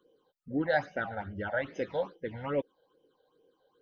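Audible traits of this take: phasing stages 8, 2.4 Hz, lowest notch 320–1300 Hz

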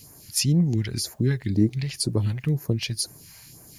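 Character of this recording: phasing stages 2, 2 Hz, lowest notch 280–3200 Hz; a quantiser's noise floor 12-bit, dither triangular

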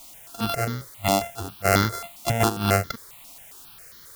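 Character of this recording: a buzz of ramps at a fixed pitch in blocks of 64 samples; tremolo triangle 3 Hz, depth 50%; a quantiser's noise floor 8-bit, dither triangular; notches that jump at a steady rate 7.4 Hz 440–2600 Hz

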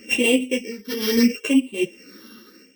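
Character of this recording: a buzz of ramps at a fixed pitch in blocks of 16 samples; phasing stages 6, 0.75 Hz, lowest notch 650–1500 Hz; tremolo triangle 1 Hz, depth 90%; a shimmering, thickened sound

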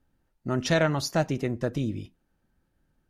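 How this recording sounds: noise floor -74 dBFS; spectral tilt -5.5 dB/oct

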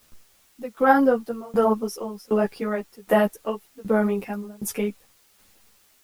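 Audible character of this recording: tremolo saw down 1.3 Hz, depth 100%; a quantiser's noise floor 10-bit, dither triangular; a shimmering, thickened sound

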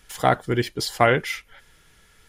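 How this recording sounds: noise floor -58 dBFS; spectral tilt -4.5 dB/oct

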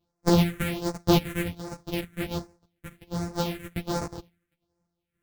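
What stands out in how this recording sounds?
a buzz of ramps at a fixed pitch in blocks of 256 samples; phasing stages 4, 1.3 Hz, lowest notch 790–3100 Hz; random-step tremolo; a shimmering, thickened sound

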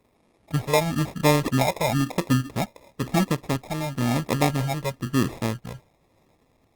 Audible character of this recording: phasing stages 8, 0.99 Hz, lowest notch 250–3000 Hz; aliases and images of a low sample rate 1500 Hz, jitter 0%; Opus

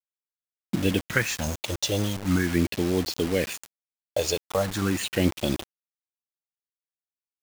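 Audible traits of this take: phasing stages 4, 0.41 Hz, lowest notch 240–1600 Hz; a quantiser's noise floor 6-bit, dither none

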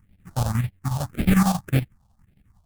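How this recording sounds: chopped level 11 Hz, depth 60%, duty 70%; aliases and images of a low sample rate 1000 Hz, jitter 20%; phasing stages 4, 1.8 Hz, lowest notch 330–1100 Hz

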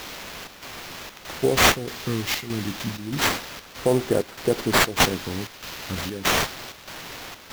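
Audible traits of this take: a quantiser's noise floor 6-bit, dither triangular; phasing stages 2, 0.31 Hz, lowest notch 550–3800 Hz; aliases and images of a low sample rate 9200 Hz, jitter 20%; chopped level 1.6 Hz, depth 60%, duty 75%

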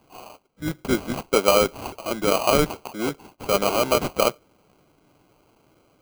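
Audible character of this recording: aliases and images of a low sample rate 1800 Hz, jitter 0%

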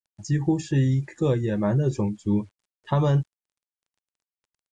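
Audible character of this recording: a quantiser's noise floor 10-bit, dither none; AAC

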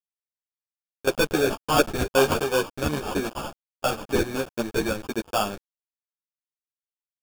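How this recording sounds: a quantiser's noise floor 6-bit, dither none; phasing stages 8, 0.45 Hz, lowest notch 720–4400 Hz; aliases and images of a low sample rate 2000 Hz, jitter 0%; a shimmering, thickened sound

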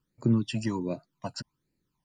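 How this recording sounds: phasing stages 12, 1.3 Hz, lowest notch 350–1100 Hz

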